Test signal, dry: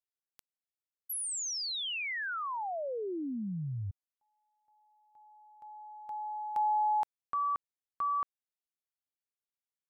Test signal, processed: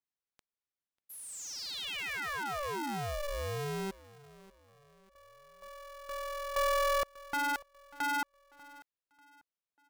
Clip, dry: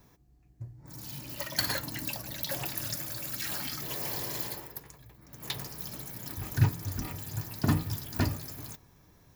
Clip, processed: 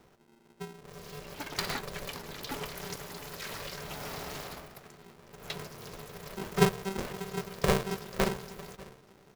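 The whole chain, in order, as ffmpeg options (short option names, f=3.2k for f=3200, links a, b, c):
-filter_complex "[0:a]aemphasis=mode=reproduction:type=50kf,asplit=2[a][b];[b]adelay=592,lowpass=f=5k:p=1,volume=-20.5dB,asplit=2[c][d];[d]adelay=592,lowpass=f=5k:p=1,volume=0.39,asplit=2[e][f];[f]adelay=592,lowpass=f=5k:p=1,volume=0.39[g];[a][c][e][g]amix=inputs=4:normalize=0,aeval=exprs='val(0)*sgn(sin(2*PI*290*n/s))':c=same"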